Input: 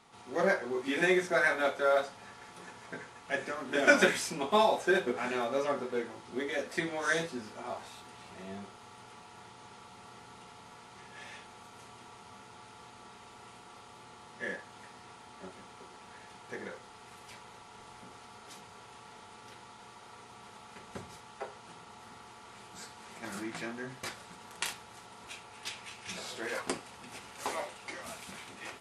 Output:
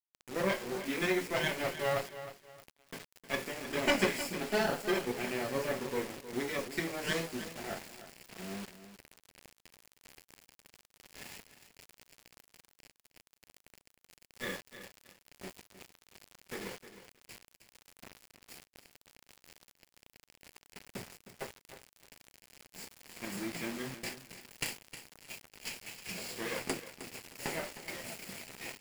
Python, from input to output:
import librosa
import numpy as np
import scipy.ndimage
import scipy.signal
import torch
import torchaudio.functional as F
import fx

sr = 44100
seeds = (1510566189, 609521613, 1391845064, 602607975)

p1 = fx.lower_of_two(x, sr, delay_ms=0.41)
p2 = fx.rider(p1, sr, range_db=4, speed_s=0.5)
p3 = p1 + (p2 * librosa.db_to_amplitude(1.0))
p4 = fx.low_shelf_res(p3, sr, hz=100.0, db=-8.0, q=1.5)
p5 = fx.quant_dither(p4, sr, seeds[0], bits=6, dither='none')
p6 = fx.echo_crushed(p5, sr, ms=311, feedback_pct=35, bits=7, wet_db=-12.5)
y = p6 * librosa.db_to_amplitude(-8.5)